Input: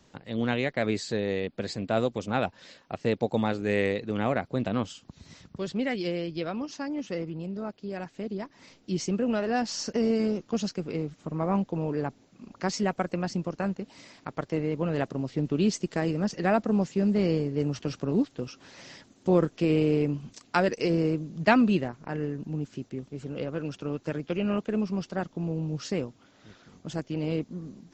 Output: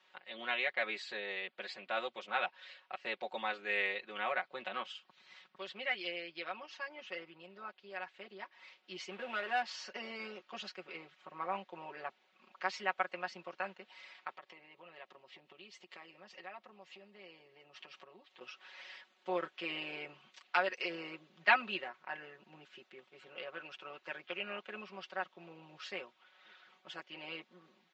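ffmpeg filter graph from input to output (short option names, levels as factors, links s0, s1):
-filter_complex "[0:a]asettb=1/sr,asplit=3[s0][s1][s2];[s0]atrim=end=9.114[s3];[s1]atrim=start=9.11:end=9.63,asetpts=PTS-STARTPTS,afade=t=in:d=0.004:c=qsin,afade=t=out:st=0.516:d=0.004:c=qsin,aeval=exprs='val(0)+0.5*0.0141*sgn(val(0))':c=same,adynamicsmooth=sensitivity=6.5:basefreq=2100[s4];[s2]atrim=start=9.626[s5];[s3][s4]acrossfade=d=0.004:c1=hsin:c2=qsin[s6];[s6][s5]acrossfade=d=0.004:c1=qsin:c2=hsin,asettb=1/sr,asplit=3[s7][s8][s9];[s7]atrim=end=14.344[s10];[s8]atrim=start=14.34:end=18.41,asetpts=PTS-STARTPTS,afade=t=in:d=0.004:c=qsin,afade=t=out:st=4.066:d=0.004:c=qsin,acompressor=threshold=0.0126:ratio=4:attack=3.2:release=140:knee=1:detection=peak,equalizer=f=1500:w=6.5:g=-8[s11];[s9]atrim=start=18.406[s12];[s10][s11]acrossfade=d=0.004:c1=hsin:c2=qsin[s13];[s13][s12]acrossfade=d=0.004:c1=qsin:c2=hsin,highpass=940,highshelf=f=4600:t=q:w=1.5:g=-14,aecho=1:1:5.4:0.9,volume=0.562"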